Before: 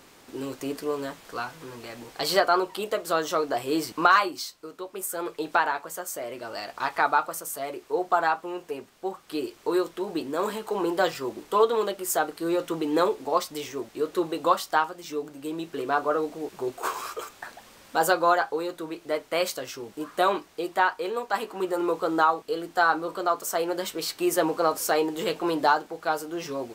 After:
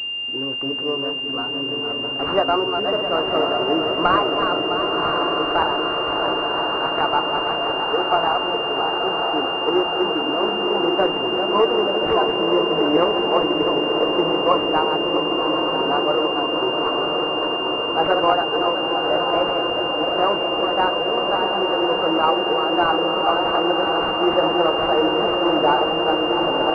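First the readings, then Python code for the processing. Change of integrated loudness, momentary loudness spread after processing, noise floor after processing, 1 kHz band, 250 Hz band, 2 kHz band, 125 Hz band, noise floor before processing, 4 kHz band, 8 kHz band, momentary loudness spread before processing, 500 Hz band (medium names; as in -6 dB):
+7.5 dB, 3 LU, -25 dBFS, +6.0 dB, +8.0 dB, +7.5 dB, +9.0 dB, -54 dBFS, no reading, under -20 dB, 13 LU, +7.5 dB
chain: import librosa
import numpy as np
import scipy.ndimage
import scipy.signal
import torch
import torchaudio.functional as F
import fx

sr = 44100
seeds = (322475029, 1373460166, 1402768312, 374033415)

y = fx.reverse_delay_fb(x, sr, ms=330, feedback_pct=60, wet_db=-5.5)
y = fx.echo_diffused(y, sr, ms=1033, feedback_pct=76, wet_db=-4.0)
y = fx.pwm(y, sr, carrier_hz=2800.0)
y = F.gain(torch.from_numpy(y), 3.5).numpy()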